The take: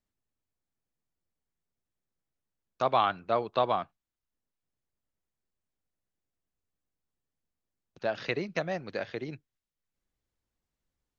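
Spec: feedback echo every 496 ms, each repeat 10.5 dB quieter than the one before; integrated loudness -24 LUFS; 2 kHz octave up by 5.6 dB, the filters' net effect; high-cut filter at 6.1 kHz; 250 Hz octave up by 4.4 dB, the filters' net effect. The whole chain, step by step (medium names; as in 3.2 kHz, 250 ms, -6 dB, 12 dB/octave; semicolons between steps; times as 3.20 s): low-pass 6.1 kHz; peaking EQ 250 Hz +6 dB; peaking EQ 2 kHz +7 dB; feedback delay 496 ms, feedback 30%, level -10.5 dB; trim +5 dB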